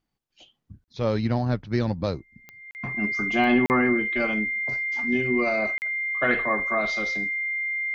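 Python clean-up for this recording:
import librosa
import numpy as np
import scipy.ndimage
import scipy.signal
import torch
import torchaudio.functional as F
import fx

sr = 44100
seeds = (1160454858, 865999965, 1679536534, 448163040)

y = fx.fix_declick_ar(x, sr, threshold=10.0)
y = fx.notch(y, sr, hz=2100.0, q=30.0)
y = fx.fix_interpolate(y, sr, at_s=(0.84, 2.71, 3.66, 5.78), length_ms=39.0)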